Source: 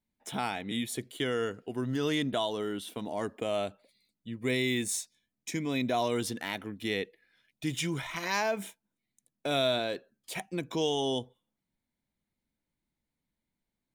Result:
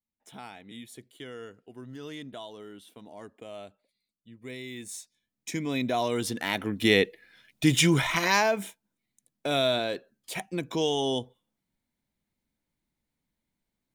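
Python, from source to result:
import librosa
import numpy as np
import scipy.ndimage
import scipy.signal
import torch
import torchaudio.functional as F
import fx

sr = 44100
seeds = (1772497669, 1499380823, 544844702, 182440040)

y = fx.gain(x, sr, db=fx.line((4.71, -11.0), (5.5, 1.5), (6.17, 1.5), (6.85, 11.0), (8.1, 11.0), (8.66, 2.5)))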